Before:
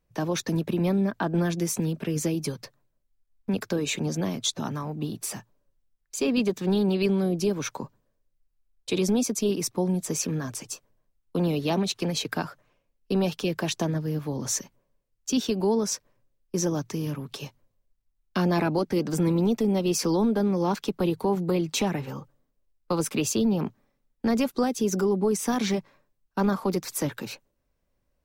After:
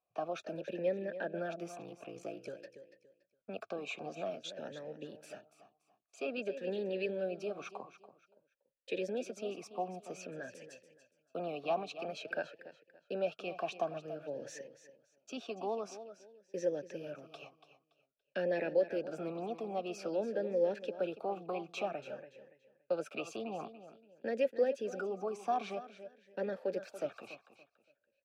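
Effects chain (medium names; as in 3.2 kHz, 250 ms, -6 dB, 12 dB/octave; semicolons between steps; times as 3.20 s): 1.76–2.48 s: ring modulator 29 Hz; feedback delay 285 ms, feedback 27%, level -13 dB; talking filter a-e 0.51 Hz; trim +2.5 dB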